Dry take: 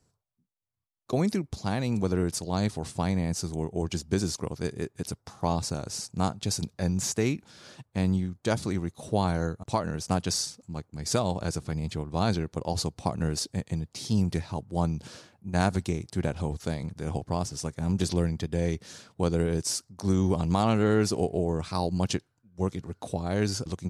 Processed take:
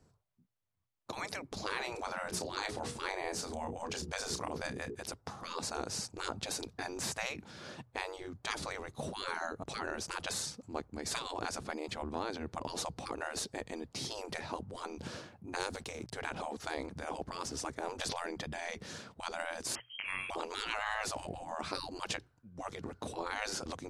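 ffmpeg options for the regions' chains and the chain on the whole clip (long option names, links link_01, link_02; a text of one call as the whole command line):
ffmpeg -i in.wav -filter_complex "[0:a]asettb=1/sr,asplit=3[link_01][link_02][link_03];[link_01]atrim=end=1.574[link_04];[link_02]atrim=start=1.57:end=4.95,asetpts=PTS-STARTPTS,afade=type=in:duration=0.004:curve=qsin,afade=type=out:start_time=3.376:duration=0.004:curve=qsin,bandreject=frequency=60:width_type=h:width=6,bandreject=frequency=120:width_type=h:width=6,bandreject=frequency=180:width_type=h:width=6,bandreject=frequency=240:width_type=h:width=6,bandreject=frequency=300:width_type=h:width=6,bandreject=frequency=360:width_type=h:width=6,bandreject=frequency=420:width_type=h:width=6,bandreject=frequency=480:width_type=h:width=6,acompressor=mode=upward:threshold=-37dB:ratio=2.5:attack=3.2:release=140:knee=2.83:detection=peak,asplit=2[link_05][link_06];[link_06]adelay=31,volume=-10dB[link_07];[link_05][link_07]amix=inputs=2:normalize=0,atrim=end_sample=149058[link_08];[link_03]atrim=start=4.946[link_09];[link_04][link_08]acrossfade=duration=0.004:curve1=hsin:curve2=qsin[link_10];[link_10][link_09]acrossfade=duration=0.004:curve1=qsin:curve2=hsin,asettb=1/sr,asplit=3[link_11][link_12][link_13];[link_11]atrim=end=12.024[link_14];[link_12]atrim=start=12.02:end=12.52,asetpts=PTS-STARTPTS,afade=type=in:duration=0.004:curve=qsin,afade=type=out:start_time=0.496:duration=0.004:curve=qsin,highpass=75,acompressor=threshold=-33dB:ratio=3:attack=3.2:release=140:knee=1:detection=peak[link_15];[link_13]atrim=start=12.516[link_16];[link_14][link_15]acrossfade=duration=0.004:curve1=hsin:curve2=qsin[link_17];[link_17][link_16]acrossfade=duration=0.004:curve1=qsin:curve2=hsin,asettb=1/sr,asplit=3[link_18][link_19][link_20];[link_18]atrim=end=15.564[link_21];[link_19]atrim=start=15.56:end=16.12,asetpts=PTS-STARTPTS,afade=type=in:duration=0.004:curve=qsin,afade=type=out:start_time=0.556:duration=0.004:curve=qsin,lowshelf=frequency=110:gain=-9,acrossover=split=410|3000[link_22][link_23][link_24];[link_23]acompressor=threshold=-47dB:ratio=2:attack=3.2:release=140:knee=2.83:detection=peak[link_25];[link_22][link_25][link_24]amix=inputs=3:normalize=0,aeval=exprs='sgn(val(0))*max(abs(val(0))-0.00119,0)':channel_layout=same[link_26];[link_20]atrim=start=16.116[link_27];[link_21][link_26]acrossfade=duration=0.004:curve1=hsin:curve2=qsin[link_28];[link_28][link_27]acrossfade=duration=0.004:curve1=qsin:curve2=hsin,asettb=1/sr,asplit=3[link_29][link_30][link_31];[link_29]atrim=end=19.754[link_32];[link_30]atrim=start=19.75:end=20.3,asetpts=PTS-STARTPTS,afade=type=in:duration=0.004:curve=qsin,afade=type=out:start_time=0.546:duration=0.004:curve=qsin,lowpass=frequency=2800:width_type=q:width=0.5098,lowpass=frequency=2800:width_type=q:width=0.6013,lowpass=frequency=2800:width_type=q:width=0.9,lowpass=frequency=2800:width_type=q:width=2.563,afreqshift=-3300,acontrast=61[link_33];[link_31]atrim=start=20.296[link_34];[link_32][link_33]acrossfade=duration=0.004:curve1=hsin:curve2=qsin[link_35];[link_35][link_34]acrossfade=duration=0.004:curve1=qsin:curve2=hsin,afftfilt=real='re*lt(hypot(re,im),0.0631)':imag='im*lt(hypot(re,im),0.0631)':win_size=1024:overlap=0.75,highshelf=frequency=3700:gain=-10.5,bandreject=frequency=60:width_type=h:width=6,bandreject=frequency=120:width_type=h:width=6,volume=4.5dB" out.wav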